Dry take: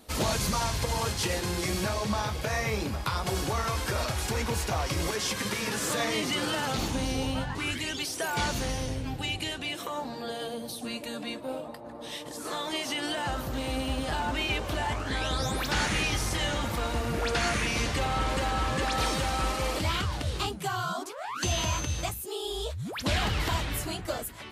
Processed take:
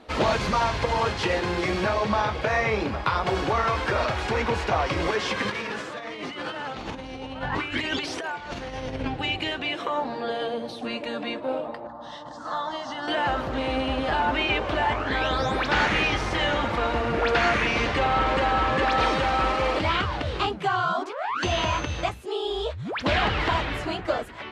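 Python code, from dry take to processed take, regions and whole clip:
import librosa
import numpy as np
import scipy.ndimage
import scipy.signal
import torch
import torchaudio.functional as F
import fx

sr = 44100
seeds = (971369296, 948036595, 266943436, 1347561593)

y = fx.chain(x, sr, fx.hum_notches(base_hz=60, count=9),
    fx.over_compress(threshold_db=-35.0, ratio=-0.5), at=(5.48, 9.08))
y = fx.chain(y, sr, fx.lowpass(hz=7200.0, slope=24),
    fx.fixed_phaser(hz=1000.0, stages=4), at=(11.87, 13.08))
y = scipy.signal.sosfilt(scipy.signal.butter(2, 5800.0, 'lowpass', fs=sr, output='sos'), y)
y = fx.bass_treble(y, sr, bass_db=-8, treble_db=-14)
y = y * 10.0 ** (8.0 / 20.0)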